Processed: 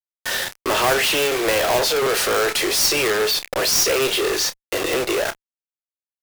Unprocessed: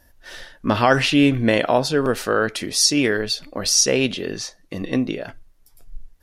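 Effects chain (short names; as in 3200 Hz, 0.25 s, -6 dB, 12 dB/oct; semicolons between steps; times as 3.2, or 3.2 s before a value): steep high-pass 350 Hz 72 dB/oct; companded quantiser 2-bit; tube stage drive 20 dB, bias 0.35; doubler 30 ms -13 dB; gain +7.5 dB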